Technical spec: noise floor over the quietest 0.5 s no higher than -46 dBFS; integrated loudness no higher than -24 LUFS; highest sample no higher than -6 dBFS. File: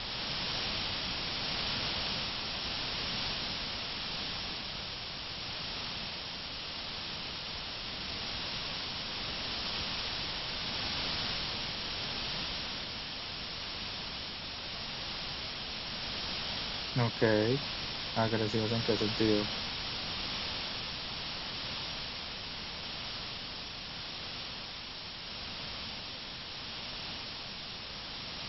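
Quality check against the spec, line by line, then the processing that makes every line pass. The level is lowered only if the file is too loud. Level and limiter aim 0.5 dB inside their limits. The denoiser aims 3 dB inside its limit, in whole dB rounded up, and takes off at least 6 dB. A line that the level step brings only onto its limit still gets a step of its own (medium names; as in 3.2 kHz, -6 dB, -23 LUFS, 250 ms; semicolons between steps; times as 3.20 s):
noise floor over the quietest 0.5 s -43 dBFS: fail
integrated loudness -35.0 LUFS: pass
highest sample -14.0 dBFS: pass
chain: noise reduction 6 dB, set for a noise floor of -43 dBFS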